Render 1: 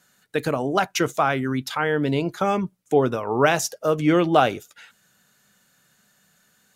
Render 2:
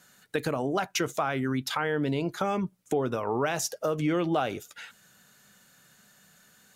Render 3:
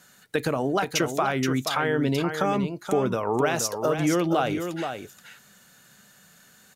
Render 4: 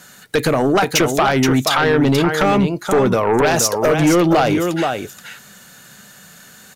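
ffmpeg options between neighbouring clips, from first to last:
ffmpeg -i in.wav -filter_complex "[0:a]asplit=2[link_01][link_02];[link_02]alimiter=limit=-15dB:level=0:latency=1:release=33,volume=1.5dB[link_03];[link_01][link_03]amix=inputs=2:normalize=0,acompressor=threshold=-24dB:ratio=2.5,volume=-4dB" out.wav
ffmpeg -i in.wav -af "aecho=1:1:476:0.422,volume=3.5dB" out.wav
ffmpeg -i in.wav -af "aeval=exprs='0.355*sin(PI/2*2.51*val(0)/0.355)':channel_layout=same" out.wav

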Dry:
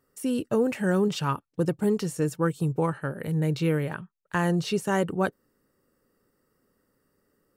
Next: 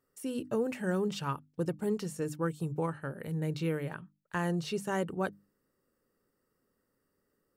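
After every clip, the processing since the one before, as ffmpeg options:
ffmpeg -i in.wav -af "bandreject=frequency=50:width_type=h:width=6,bandreject=frequency=100:width_type=h:width=6,bandreject=frequency=150:width_type=h:width=6,bandreject=frequency=200:width_type=h:width=6,bandreject=frequency=250:width_type=h:width=6,bandreject=frequency=300:width_type=h:width=6,volume=-7dB" out.wav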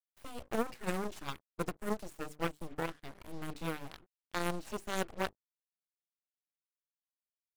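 ffmpeg -i in.wav -af "acrusher=bits=7:mix=0:aa=0.5,aeval=exprs='0.0891*(cos(1*acos(clip(val(0)/0.0891,-1,1)))-cos(1*PI/2))+0.0316*(cos(3*acos(clip(val(0)/0.0891,-1,1)))-cos(3*PI/2))+0.00562*(cos(8*acos(clip(val(0)/0.0891,-1,1)))-cos(8*PI/2))':channel_layout=same,volume=1.5dB" out.wav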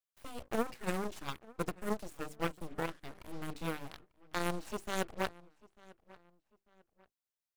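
ffmpeg -i in.wav -filter_complex "[0:a]asplit=2[link_01][link_02];[link_02]adelay=895,lowpass=frequency=3500:poles=1,volume=-22dB,asplit=2[link_03][link_04];[link_04]adelay=895,lowpass=frequency=3500:poles=1,volume=0.35[link_05];[link_01][link_03][link_05]amix=inputs=3:normalize=0" out.wav

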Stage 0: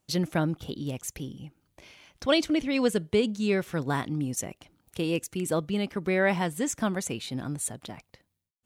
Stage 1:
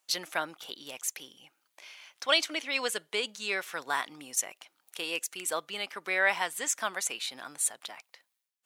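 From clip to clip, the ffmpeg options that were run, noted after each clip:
ffmpeg -i in.wav -af "highpass=980,volume=3.5dB" out.wav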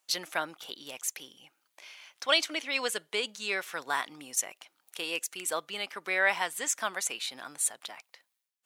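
ffmpeg -i in.wav -af anull out.wav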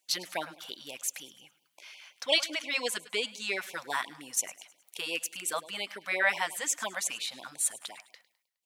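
ffmpeg -i in.wav -af "aecho=1:1:104|208|312|416:0.119|0.0523|0.023|0.0101,afftfilt=real='re*(1-between(b*sr/1024,310*pow(1600/310,0.5+0.5*sin(2*PI*5.7*pts/sr))/1.41,310*pow(1600/310,0.5+0.5*sin(2*PI*5.7*pts/sr))*1.41))':imag='im*(1-between(b*sr/1024,310*pow(1600/310,0.5+0.5*sin(2*PI*5.7*pts/sr))/1.41,310*pow(1600/310,0.5+0.5*sin(2*PI*5.7*pts/sr))*1.41))':win_size=1024:overlap=0.75" out.wav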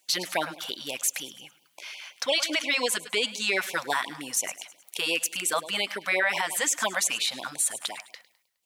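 ffmpeg -i in.wav -af "alimiter=limit=-23.5dB:level=0:latency=1:release=59,volume=9dB" out.wav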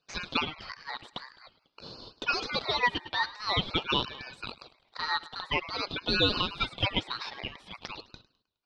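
ffmpeg -i in.wav -af "highpass=150,equalizer=frequency=480:width_type=q:width=4:gain=10,equalizer=frequency=960:width_type=q:width=4:gain=6,equalizer=frequency=1600:width_type=q:width=4:gain=9,equalizer=frequency=2400:width_type=q:width=4:gain=4,lowpass=frequency=3000:width=0.5412,lowpass=frequency=3000:width=1.3066,aeval=exprs='0.422*(cos(1*acos(clip(val(0)/0.422,-1,1)))-cos(1*PI/2))+0.0133*(cos(3*acos(clip(val(0)/0.422,-1,1)))-cos(3*PI/2))':channel_layout=same,aeval=exprs='val(0)*sin(2*PI*1700*n/s+1700*0.2/0.48*sin(2*PI*0.48*n/s))':channel_layout=same,volume=-2.5dB" out.wav

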